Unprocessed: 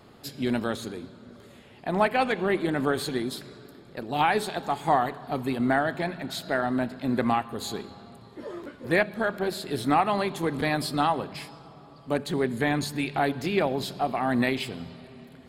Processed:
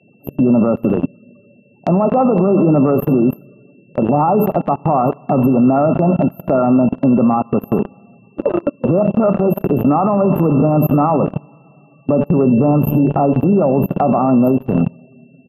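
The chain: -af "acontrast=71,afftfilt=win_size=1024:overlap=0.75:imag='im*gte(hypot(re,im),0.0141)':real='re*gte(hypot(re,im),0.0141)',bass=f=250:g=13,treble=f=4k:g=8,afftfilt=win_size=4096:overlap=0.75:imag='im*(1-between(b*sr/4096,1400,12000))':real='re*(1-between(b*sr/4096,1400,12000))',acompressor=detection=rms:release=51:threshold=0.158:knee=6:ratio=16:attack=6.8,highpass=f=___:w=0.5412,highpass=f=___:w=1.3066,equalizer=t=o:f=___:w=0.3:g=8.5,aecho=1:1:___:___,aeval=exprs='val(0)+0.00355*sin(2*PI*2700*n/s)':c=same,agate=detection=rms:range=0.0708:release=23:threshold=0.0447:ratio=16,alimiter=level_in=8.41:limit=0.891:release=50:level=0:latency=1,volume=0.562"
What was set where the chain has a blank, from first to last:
150, 150, 570, 73, 0.0841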